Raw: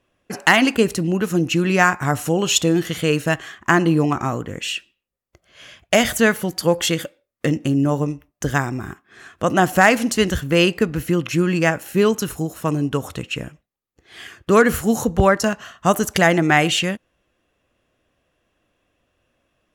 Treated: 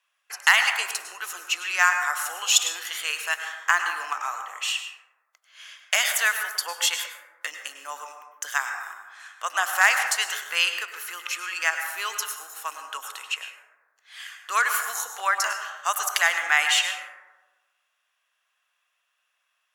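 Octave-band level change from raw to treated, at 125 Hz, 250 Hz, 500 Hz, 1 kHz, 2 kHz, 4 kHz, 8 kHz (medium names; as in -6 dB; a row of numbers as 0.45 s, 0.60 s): under -40 dB, under -40 dB, -22.0 dB, -5.5 dB, -1.0 dB, -1.0 dB, +0.5 dB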